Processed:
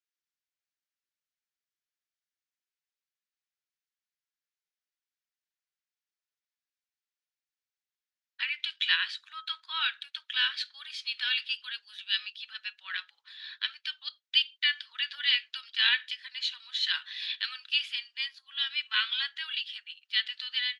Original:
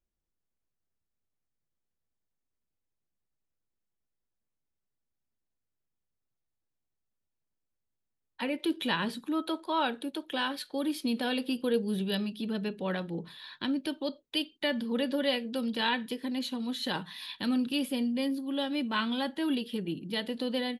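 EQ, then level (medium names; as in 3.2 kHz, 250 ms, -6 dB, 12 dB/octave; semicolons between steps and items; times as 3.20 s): steep high-pass 1.4 kHz 36 dB/octave; low-pass 6.4 kHz 24 dB/octave; dynamic bell 2.9 kHz, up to +7 dB, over -47 dBFS, Q 0.79; +2.0 dB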